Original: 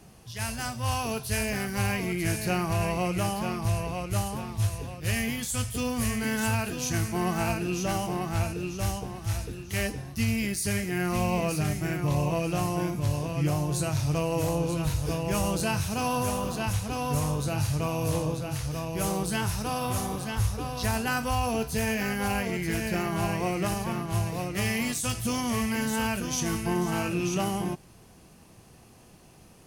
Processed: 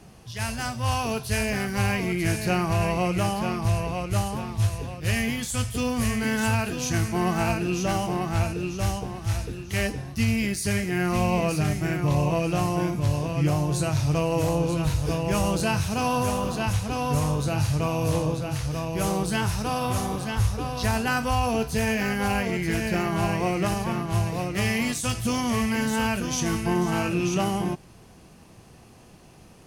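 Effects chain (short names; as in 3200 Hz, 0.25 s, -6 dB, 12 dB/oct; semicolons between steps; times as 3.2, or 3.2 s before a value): high shelf 9600 Hz -8.5 dB; gain +3.5 dB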